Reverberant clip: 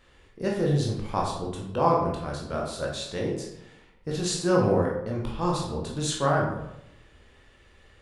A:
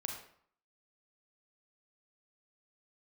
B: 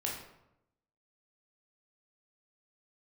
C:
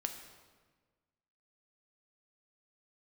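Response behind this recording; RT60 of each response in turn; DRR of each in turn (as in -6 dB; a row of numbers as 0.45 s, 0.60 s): B; 0.60 s, 0.85 s, 1.4 s; 1.5 dB, -3.0 dB, 5.0 dB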